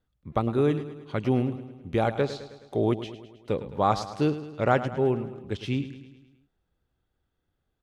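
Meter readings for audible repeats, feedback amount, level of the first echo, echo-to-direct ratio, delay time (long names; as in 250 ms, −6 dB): 5, 56%, −13.0 dB, −11.5 dB, 106 ms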